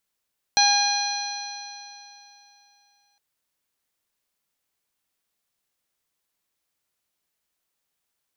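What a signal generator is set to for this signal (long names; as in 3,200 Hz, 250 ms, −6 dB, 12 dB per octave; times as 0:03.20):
stiff-string partials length 2.61 s, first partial 811 Hz, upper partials −7/−7/−12/1.5/−18/−2.5 dB, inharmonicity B 0.0015, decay 3.00 s, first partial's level −19 dB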